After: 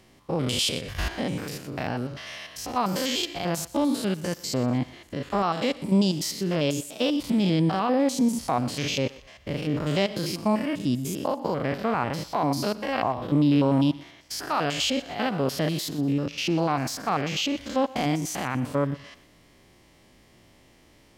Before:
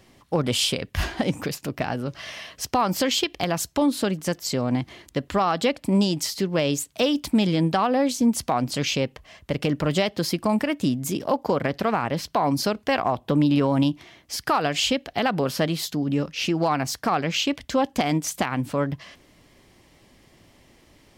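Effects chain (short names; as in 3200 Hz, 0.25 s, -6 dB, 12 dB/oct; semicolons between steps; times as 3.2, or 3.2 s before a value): stepped spectrum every 0.1 s; thinning echo 0.122 s, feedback 40%, high-pass 480 Hz, level -18 dB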